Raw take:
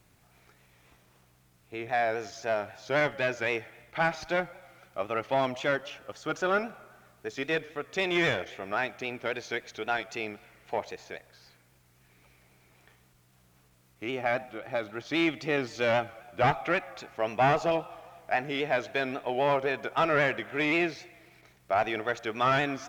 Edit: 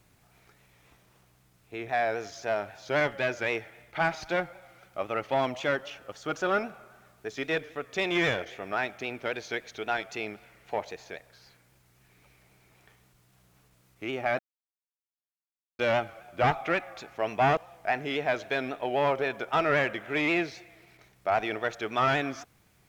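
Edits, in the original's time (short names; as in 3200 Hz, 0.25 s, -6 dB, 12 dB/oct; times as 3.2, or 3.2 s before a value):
14.39–15.79 mute
17.57–18.01 cut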